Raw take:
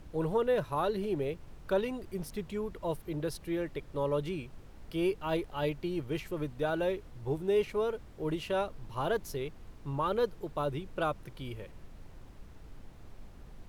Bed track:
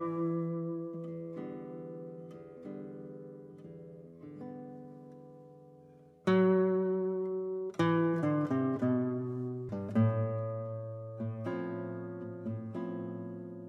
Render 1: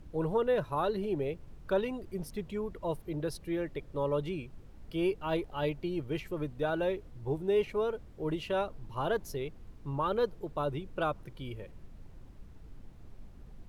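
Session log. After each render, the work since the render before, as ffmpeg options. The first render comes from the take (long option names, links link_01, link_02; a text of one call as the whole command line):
ffmpeg -i in.wav -af "afftdn=noise_reduction=6:noise_floor=-52" out.wav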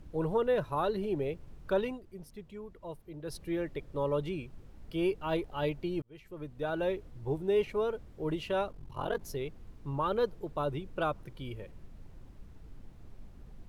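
ffmpeg -i in.wav -filter_complex "[0:a]asettb=1/sr,asplit=3[link_01][link_02][link_03];[link_01]atrim=end=8.714[link_04];[link_02]atrim=start=8.71:end=9.21,asetpts=PTS-STARTPTS,afade=type=in:duration=0.004:curve=qsin,afade=type=out:start_time=0.496:duration=0.004:curve=qsin,aeval=exprs='val(0)*sin(2*PI*22*n/s)':channel_layout=same[link_05];[link_03]atrim=start=9.206[link_06];[link_04][link_05]acrossfade=duration=0.004:curve1=hsin:curve2=qsin[link_07];[link_07][link_06]acrossfade=duration=0.004:curve1=qsin:curve2=hsin,asplit=4[link_08][link_09][link_10][link_11];[link_08]atrim=end=2,asetpts=PTS-STARTPTS,afade=type=out:start_time=1.85:duration=0.15:curve=qsin:silence=0.354813[link_12];[link_09]atrim=start=2:end=3.24,asetpts=PTS-STARTPTS,volume=-9dB[link_13];[link_10]atrim=start=3.24:end=6.02,asetpts=PTS-STARTPTS,afade=type=in:duration=0.15:curve=qsin:silence=0.354813,afade=type=out:start_time=2.776:duration=0.004:curve=hsin[link_14];[link_11]atrim=start=6.02,asetpts=PTS-STARTPTS,afade=type=in:duration=0.88[link_15];[link_12][link_13][link_14][link_15]concat=n=4:v=0:a=1" out.wav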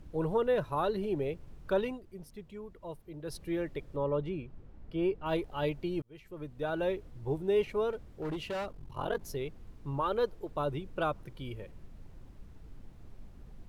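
ffmpeg -i in.wav -filter_complex "[0:a]asettb=1/sr,asplit=3[link_01][link_02][link_03];[link_01]atrim=end=3.964[link_04];[link_02]atrim=start=3.96:end=5.26,asetpts=PTS-STARTPTS,afade=type=in:duration=0.004:curve=qsin,afade=type=out:start_time=1.296:duration=0.004:curve=qsin,lowpass=frequency=1600:poles=1[link_05];[link_03]atrim=start=5.256[link_06];[link_04][link_05]acrossfade=duration=0.004:curve1=hsin:curve2=qsin[link_07];[link_07][link_06]acrossfade=duration=0.004:curve1=qsin:curve2=hsin,asettb=1/sr,asplit=3[link_08][link_09][link_10];[link_08]atrim=end=7.904[link_11];[link_09]atrim=start=7.9:end=8.8,asetpts=PTS-STARTPTS,afade=type=in:duration=0.004:curve=qsin,afade=type=out:start_time=0.896:duration=0.004:curve=qsin,asoftclip=type=hard:threshold=-32.5dB[link_12];[link_10]atrim=start=8.796[link_13];[link_11][link_12]acrossfade=duration=0.004:curve1=hsin:curve2=qsin[link_14];[link_14][link_13]acrossfade=duration=0.004:curve1=qsin:curve2=hsin,asettb=1/sr,asplit=3[link_15][link_16][link_17];[link_15]atrim=end=10.004[link_18];[link_16]atrim=start=10:end=10.51,asetpts=PTS-STARTPTS,afade=type=in:duration=0.004:curve=qsin,afade=type=out:start_time=0.506:duration=0.004:curve=qsin,equalizer=frequency=160:width_type=o:width=0.77:gain=-9[link_19];[link_17]atrim=start=10.506[link_20];[link_18][link_19]acrossfade=duration=0.004:curve1=hsin:curve2=qsin[link_21];[link_21][link_20]acrossfade=duration=0.004:curve1=qsin:curve2=hsin" out.wav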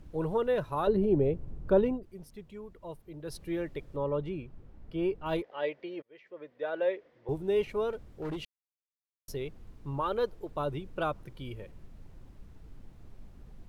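ffmpeg -i in.wav -filter_complex "[0:a]asettb=1/sr,asplit=3[link_01][link_02][link_03];[link_01]atrim=end=0.874[link_04];[link_02]atrim=start=0.87:end=2.03,asetpts=PTS-STARTPTS,afade=type=in:duration=0.004:curve=qsin,afade=type=out:start_time=1.156:duration=0.004:curve=qsin,tiltshelf=frequency=1100:gain=9[link_05];[link_03]atrim=start=2.026[link_06];[link_04][link_05]acrossfade=duration=0.004:curve1=hsin:curve2=qsin[link_07];[link_07][link_06]acrossfade=duration=0.004:curve1=qsin:curve2=hsin,asettb=1/sr,asplit=3[link_08][link_09][link_10];[link_08]atrim=end=5.424[link_11];[link_09]atrim=start=5.42:end=7.29,asetpts=PTS-STARTPTS,afade=type=in:duration=0.004:curve=qsin,afade=type=out:start_time=1.866:duration=0.004:curve=qsin,highpass=450,equalizer=frequency=520:width_type=q:width=4:gain=7,equalizer=frequency=840:width_type=q:width=4:gain=-4,equalizer=frequency=1300:width_type=q:width=4:gain=-4,equalizer=frequency=1900:width_type=q:width=4:gain=7,equalizer=frequency=2800:width_type=q:width=4:gain=-3,equalizer=frequency=4100:width_type=q:width=4:gain=-6,lowpass=frequency=4500:width=0.5412,lowpass=frequency=4500:width=1.3066[link_12];[link_10]atrim=start=7.286[link_13];[link_11][link_12]acrossfade=duration=0.004:curve1=hsin:curve2=qsin[link_14];[link_14][link_13]acrossfade=duration=0.004:curve1=qsin:curve2=hsin,asplit=3[link_15][link_16][link_17];[link_15]atrim=end=8.45,asetpts=PTS-STARTPTS,afade=type=out:start_time=8.446:duration=0.004:curve=hsin[link_18];[link_16]atrim=start=8.45:end=9.28,asetpts=PTS-STARTPTS,volume=0[link_19];[link_17]atrim=start=9.28,asetpts=PTS-STARTPTS,afade=type=in:duration=0.004:curve=hsin[link_20];[link_18][link_19][link_20]concat=n=3:v=0:a=1" out.wav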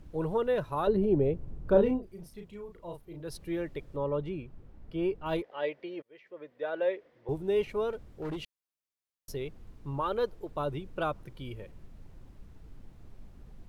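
ffmpeg -i in.wav -filter_complex "[0:a]asettb=1/sr,asplit=3[link_01][link_02][link_03];[link_01]atrim=end=1.654[link_04];[link_02]atrim=start=1.65:end=3.23,asetpts=PTS-STARTPTS,afade=type=in:duration=0.004:curve=qsin,afade=type=out:start_time=1.576:duration=0.004:curve=qsin,asplit=2[link_05][link_06];[link_06]adelay=35,volume=-5dB[link_07];[link_05][link_07]amix=inputs=2:normalize=0,atrim=end_sample=69678[link_08];[link_03]atrim=start=3.226[link_09];[link_04][link_08]acrossfade=duration=0.004:curve1=hsin:curve2=qsin[link_10];[link_10][link_09]acrossfade=duration=0.004:curve1=qsin:curve2=hsin" out.wav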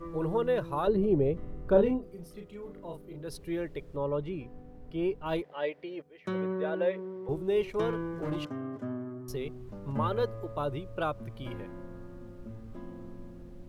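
ffmpeg -i in.wav -i bed.wav -filter_complex "[1:a]volume=-6.5dB[link_01];[0:a][link_01]amix=inputs=2:normalize=0" out.wav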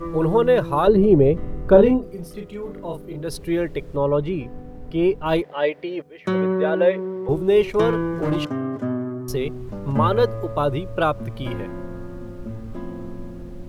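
ffmpeg -i in.wav -af "volume=11.5dB,alimiter=limit=-1dB:level=0:latency=1" out.wav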